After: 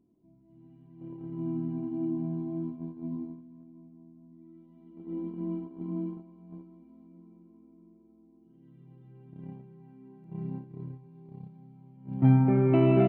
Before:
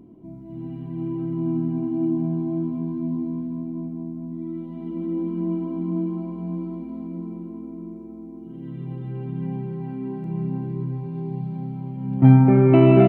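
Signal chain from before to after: gate -26 dBFS, range -13 dB; trim -8.5 dB

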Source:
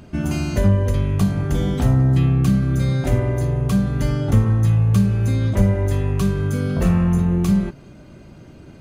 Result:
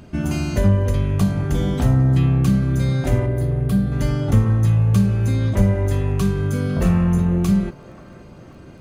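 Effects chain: crackle 12 per s -46 dBFS; 3.26–3.92 s: fifteen-band graphic EQ 1 kHz -9 dB, 2.5 kHz -6 dB, 6.3 kHz -11 dB; feedback echo behind a band-pass 533 ms, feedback 60%, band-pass 900 Hz, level -15 dB

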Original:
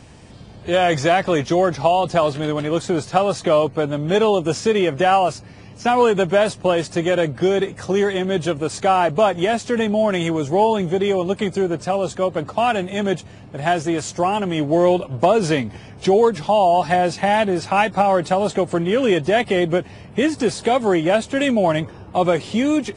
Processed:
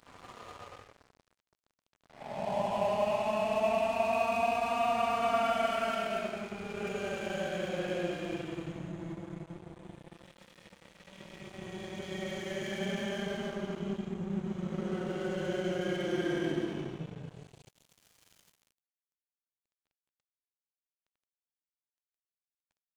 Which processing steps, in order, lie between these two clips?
Doppler pass-by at 8.01 s, 21 m/s, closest 8.5 m; Paulstretch 24×, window 0.05 s, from 12.20 s; crossover distortion -51.5 dBFS; trim +8 dB

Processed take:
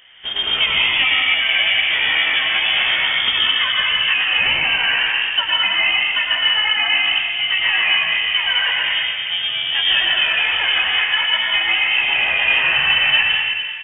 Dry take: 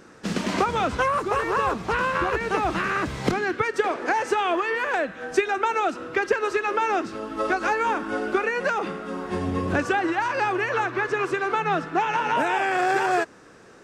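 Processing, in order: doubling 16 ms -4 dB; plate-style reverb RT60 2 s, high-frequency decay 0.7×, pre-delay 90 ms, DRR -4 dB; frequency inversion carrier 3.4 kHz

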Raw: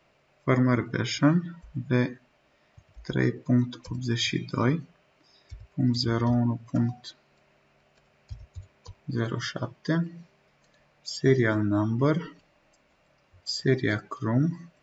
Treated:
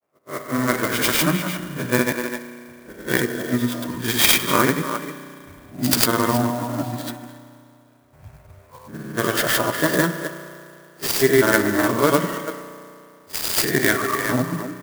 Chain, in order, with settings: reverse spectral sustain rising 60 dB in 0.46 s; gate -53 dBFS, range -8 dB; high-pass 610 Hz 6 dB/octave; speakerphone echo 300 ms, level -8 dB; level rider gain up to 11 dB; granulator, pitch spread up and down by 0 st; level-controlled noise filter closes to 1.2 kHz, open at -21.5 dBFS; spring tank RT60 2.5 s, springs 33 ms, chirp 35 ms, DRR 10.5 dB; sampling jitter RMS 0.046 ms; trim +2.5 dB

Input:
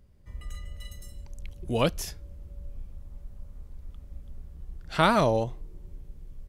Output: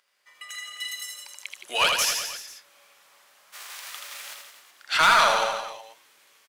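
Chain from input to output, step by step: 3.52–4.33 s: formants flattened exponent 0.6; high-pass 1.4 kHz 12 dB/octave; level rider gain up to 7 dB; overdrive pedal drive 22 dB, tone 5.5 kHz, clips at -4.5 dBFS; reverse bouncing-ball echo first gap 80 ms, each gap 1.1×, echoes 5; trim -5.5 dB

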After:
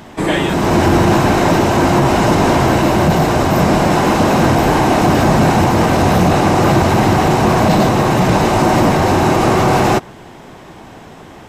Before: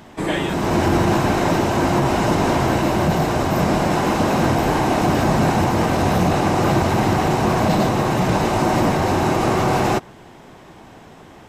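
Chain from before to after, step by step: saturation -7.5 dBFS, distortion -24 dB; trim +6.5 dB

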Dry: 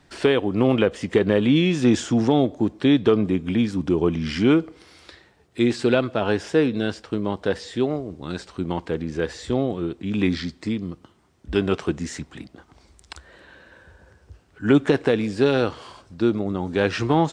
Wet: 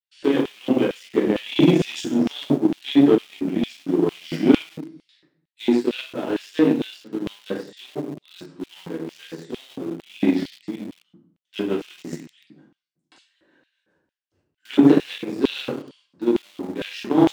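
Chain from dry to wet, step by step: gate -48 dBFS, range -22 dB; simulated room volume 110 m³, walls mixed, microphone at 2 m; in parallel at -4 dB: small samples zeroed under -16.5 dBFS; on the sum: peaking EQ 150 Hz +13 dB 0.55 oct; Chebyshev shaper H 7 -22 dB, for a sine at 12.5 dBFS; LFO high-pass square 2.2 Hz 290–3000 Hz; trim -14.5 dB

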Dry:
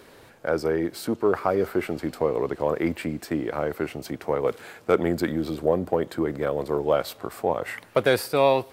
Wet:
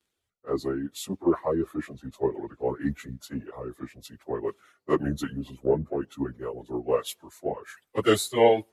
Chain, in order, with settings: frequency-domain pitch shifter -3 st; reverb removal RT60 0.93 s; three bands expanded up and down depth 100%; trim -2 dB

